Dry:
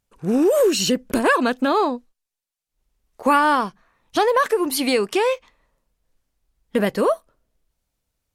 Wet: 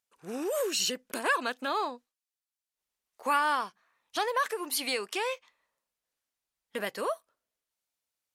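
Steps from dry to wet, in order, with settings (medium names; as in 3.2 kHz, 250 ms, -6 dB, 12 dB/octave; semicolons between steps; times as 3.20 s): high-pass 1.2 kHz 6 dB/octave; trim -6 dB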